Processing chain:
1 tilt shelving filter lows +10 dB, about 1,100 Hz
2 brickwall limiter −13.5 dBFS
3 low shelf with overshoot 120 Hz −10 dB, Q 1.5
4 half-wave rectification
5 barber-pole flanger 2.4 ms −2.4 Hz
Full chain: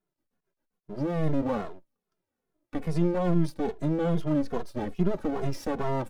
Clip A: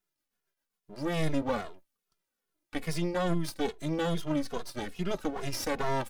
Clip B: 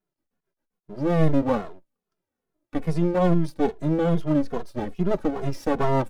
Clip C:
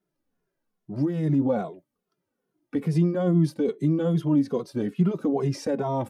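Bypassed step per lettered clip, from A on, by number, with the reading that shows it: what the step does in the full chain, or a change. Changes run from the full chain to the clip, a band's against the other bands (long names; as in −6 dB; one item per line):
1, 4 kHz band +11.5 dB
2, average gain reduction 3.0 dB
4, distortion level −1 dB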